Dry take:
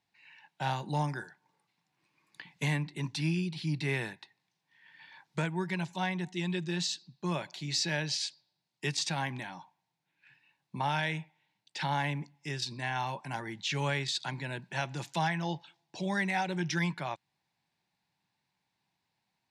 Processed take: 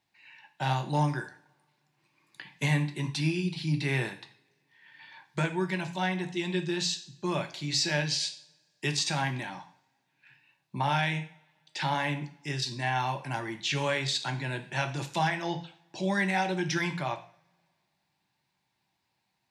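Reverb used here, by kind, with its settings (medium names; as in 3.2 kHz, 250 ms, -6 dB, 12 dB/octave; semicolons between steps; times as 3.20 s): two-slope reverb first 0.46 s, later 1.9 s, from -27 dB, DRR 5.5 dB; trim +2.5 dB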